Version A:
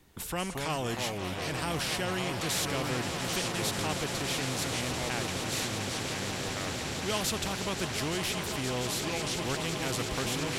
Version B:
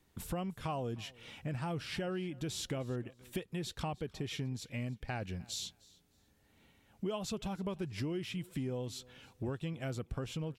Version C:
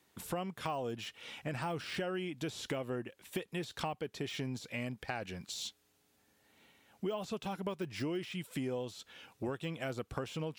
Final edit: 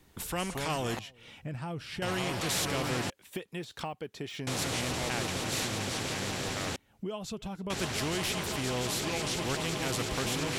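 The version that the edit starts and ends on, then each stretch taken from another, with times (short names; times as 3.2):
A
0.99–2.02 from B
3.1–4.47 from C
6.76–7.7 from B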